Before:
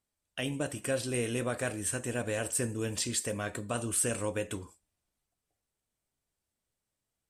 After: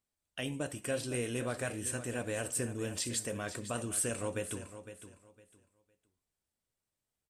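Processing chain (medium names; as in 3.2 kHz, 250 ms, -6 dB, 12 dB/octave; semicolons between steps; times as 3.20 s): feedback delay 508 ms, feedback 23%, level -12 dB; trim -3.5 dB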